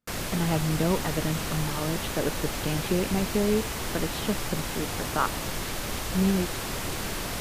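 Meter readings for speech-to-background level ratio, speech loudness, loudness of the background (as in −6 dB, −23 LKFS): 1.5 dB, −30.0 LKFS, −31.5 LKFS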